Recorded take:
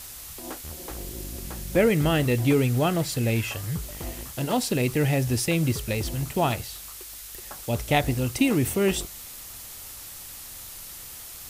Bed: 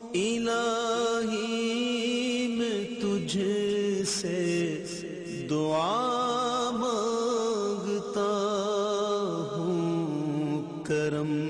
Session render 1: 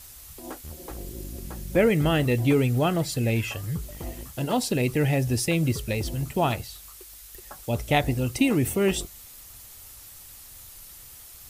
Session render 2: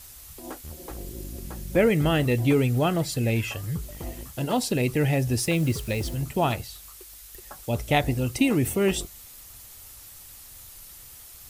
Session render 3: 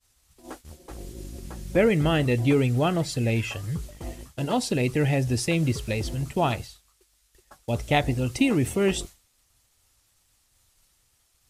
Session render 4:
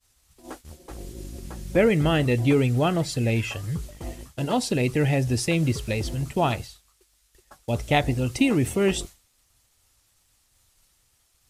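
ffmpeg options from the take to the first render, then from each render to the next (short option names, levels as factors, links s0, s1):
-af "afftdn=nr=7:nf=-41"
-filter_complex "[0:a]asettb=1/sr,asplit=3[s0][s1][s2];[s0]atrim=end=5.384[s3];[s1]atrim=start=5.38:end=6.15,asetpts=PTS-STARTPTS,afade=t=in:d=0.004:c=qsin,afade=t=out:st=0.766:d=0.004:c=qsin,acrusher=bits=6:mix=0:aa=0.5[s4];[s2]atrim=start=6.146[s5];[s3][s4]acrossfade=d=0.004:c1=hsin:c2=qsin[s6];[s6][s5]acrossfade=d=0.004:c1=qsin:c2=hsin"
-af "agate=range=0.0224:threshold=0.02:ratio=3:detection=peak,lowpass=9100"
-af "volume=1.12"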